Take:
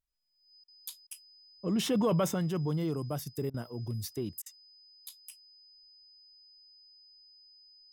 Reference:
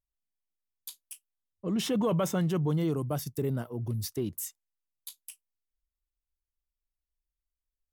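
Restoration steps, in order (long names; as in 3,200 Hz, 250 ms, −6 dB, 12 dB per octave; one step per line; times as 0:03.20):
notch filter 5,000 Hz, Q 30
repair the gap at 0:00.64/0:01.07/0:03.50/0:04.42, 40 ms
level 0 dB, from 0:02.34 +3.5 dB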